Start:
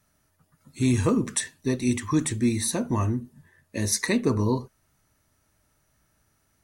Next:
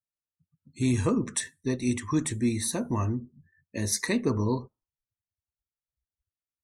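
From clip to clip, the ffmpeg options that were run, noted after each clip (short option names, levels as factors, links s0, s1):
-af "afftdn=nr=35:nf=-49,volume=0.708"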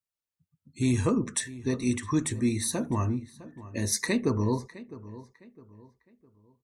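-filter_complex "[0:a]asplit=2[s0][s1];[s1]adelay=658,lowpass=f=2900:p=1,volume=0.141,asplit=2[s2][s3];[s3]adelay=658,lowpass=f=2900:p=1,volume=0.36,asplit=2[s4][s5];[s5]adelay=658,lowpass=f=2900:p=1,volume=0.36[s6];[s0][s2][s4][s6]amix=inputs=4:normalize=0"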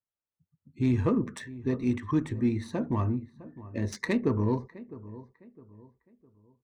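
-af "adynamicsmooth=sensitivity=1.5:basefreq=1700"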